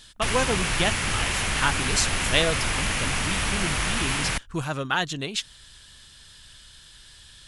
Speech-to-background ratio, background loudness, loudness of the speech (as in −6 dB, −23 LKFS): −3.5 dB, −25.0 LKFS, −28.5 LKFS